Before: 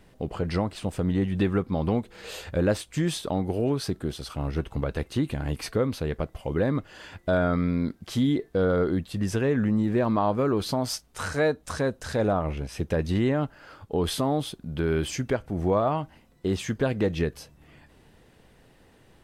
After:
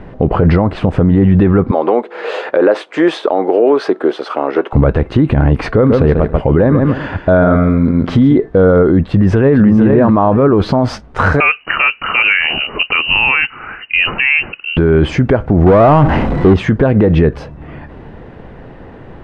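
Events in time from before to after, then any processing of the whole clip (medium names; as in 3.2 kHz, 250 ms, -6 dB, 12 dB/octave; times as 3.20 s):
1.71–4.73 s: high-pass 360 Hz 24 dB/octave
5.68–8.36 s: feedback delay 139 ms, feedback 21%, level -9 dB
9.07–9.65 s: echo throw 450 ms, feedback 15%, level -4 dB
11.40–14.77 s: frequency inversion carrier 2.9 kHz
15.66–16.54 s: power-law waveshaper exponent 0.5
whole clip: low-pass 1.5 kHz 12 dB/octave; loudness maximiser +24.5 dB; trim -1 dB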